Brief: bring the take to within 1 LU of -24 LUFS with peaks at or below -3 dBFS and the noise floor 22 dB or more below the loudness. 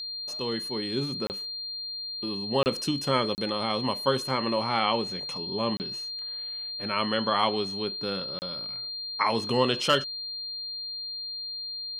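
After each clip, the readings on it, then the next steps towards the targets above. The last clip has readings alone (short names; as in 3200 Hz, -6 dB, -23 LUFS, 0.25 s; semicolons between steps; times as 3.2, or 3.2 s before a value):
dropouts 5; longest dropout 29 ms; steady tone 4200 Hz; tone level -33 dBFS; loudness -28.5 LUFS; peak -9.0 dBFS; loudness target -24.0 LUFS
-> interpolate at 1.27/2.63/3.35/5.77/8.39, 29 ms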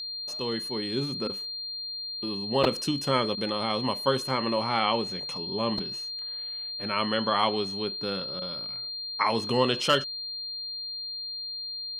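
dropouts 0; steady tone 4200 Hz; tone level -33 dBFS
-> notch 4200 Hz, Q 30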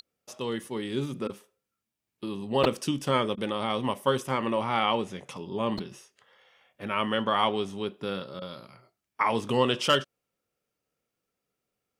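steady tone none; loudness -28.5 LUFS; peak -9.5 dBFS; loudness target -24.0 LUFS
-> gain +4.5 dB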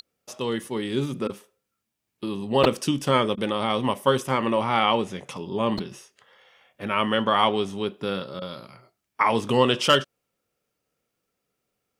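loudness -24.0 LUFS; peak -5.0 dBFS; noise floor -81 dBFS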